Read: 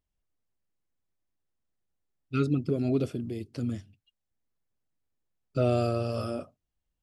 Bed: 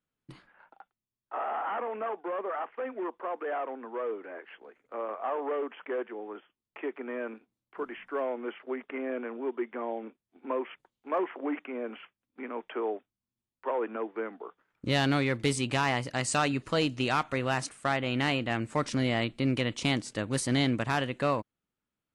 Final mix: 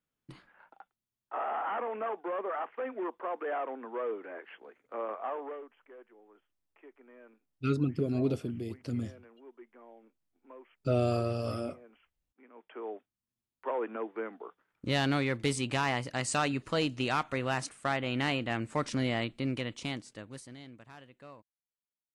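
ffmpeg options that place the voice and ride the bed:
-filter_complex "[0:a]adelay=5300,volume=-2.5dB[a];[1:a]volume=16dB,afade=t=out:st=5.1:d=0.6:silence=0.11885,afade=t=in:st=12.52:d=0.76:silence=0.141254,afade=t=out:st=19.04:d=1.52:silence=0.0944061[b];[a][b]amix=inputs=2:normalize=0"

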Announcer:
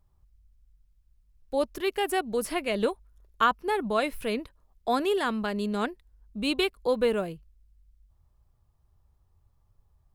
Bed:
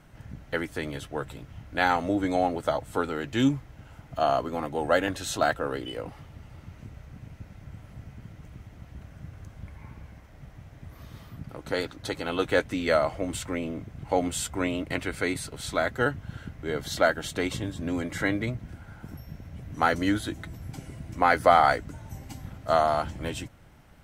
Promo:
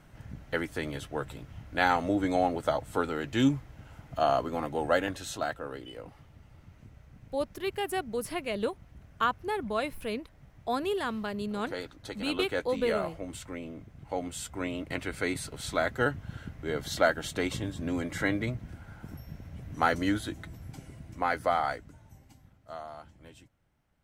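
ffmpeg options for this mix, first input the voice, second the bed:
-filter_complex "[0:a]adelay=5800,volume=-4.5dB[a];[1:a]volume=5dB,afade=t=out:st=4.74:d=0.73:silence=0.446684,afade=t=in:st=14.29:d=1.18:silence=0.473151,afade=t=out:st=19.76:d=2.78:silence=0.133352[b];[a][b]amix=inputs=2:normalize=0"

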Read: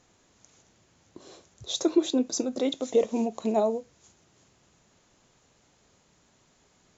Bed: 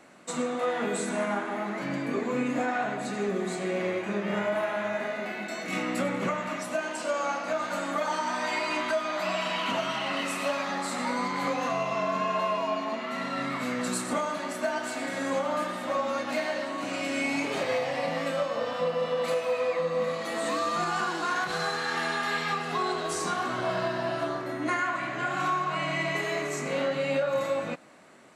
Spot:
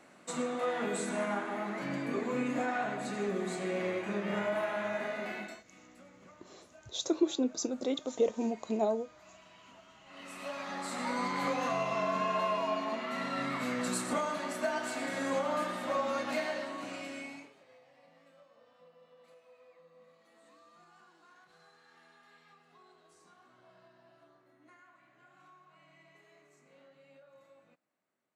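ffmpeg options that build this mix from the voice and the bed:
-filter_complex "[0:a]adelay=5250,volume=-5.5dB[a];[1:a]volume=20dB,afade=t=out:st=5.37:d=0.26:silence=0.0668344,afade=t=in:st=10.05:d=1.24:silence=0.0595662,afade=t=out:st=16.3:d=1.24:silence=0.0354813[b];[a][b]amix=inputs=2:normalize=0"

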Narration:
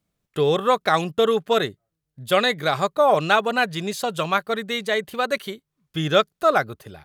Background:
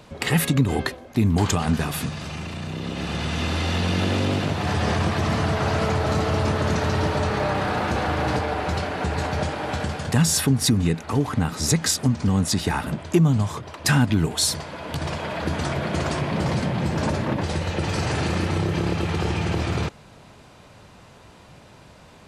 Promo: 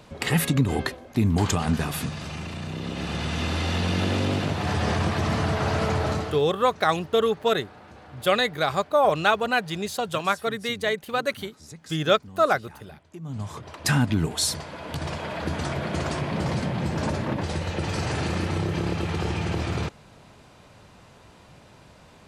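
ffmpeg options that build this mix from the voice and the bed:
-filter_complex "[0:a]adelay=5950,volume=-2.5dB[a];[1:a]volume=18.5dB,afade=t=out:st=6.05:d=0.38:silence=0.0841395,afade=t=in:st=13.21:d=0.52:silence=0.0944061[b];[a][b]amix=inputs=2:normalize=0"

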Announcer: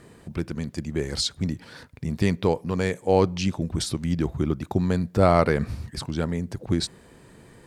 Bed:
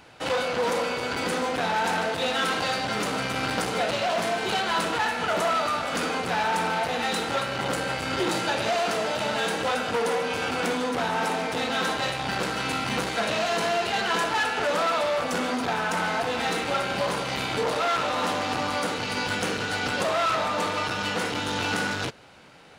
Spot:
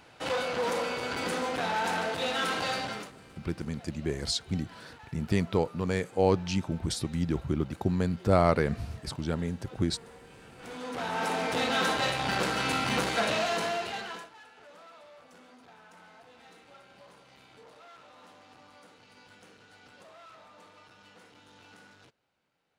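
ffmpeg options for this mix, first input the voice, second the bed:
-filter_complex "[0:a]adelay=3100,volume=-4.5dB[a];[1:a]volume=21.5dB,afade=t=out:st=2.79:d=0.33:silence=0.0749894,afade=t=in:st=10.58:d=1:silence=0.0501187,afade=t=out:st=13.2:d=1.1:silence=0.0446684[b];[a][b]amix=inputs=2:normalize=0"

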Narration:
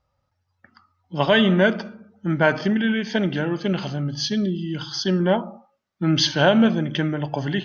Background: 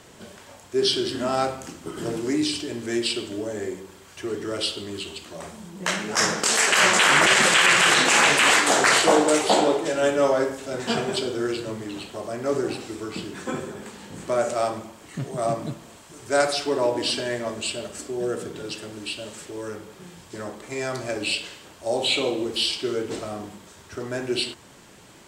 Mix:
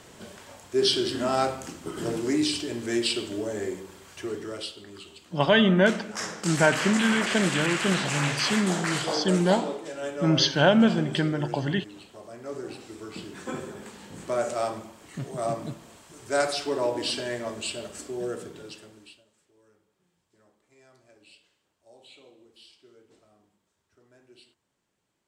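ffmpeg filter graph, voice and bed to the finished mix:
-filter_complex "[0:a]adelay=4200,volume=-2.5dB[a];[1:a]volume=7dB,afade=t=out:st=4.08:d=0.65:silence=0.281838,afade=t=in:st=12.52:d=1.13:silence=0.398107,afade=t=out:st=18.15:d=1.09:silence=0.0530884[b];[a][b]amix=inputs=2:normalize=0"

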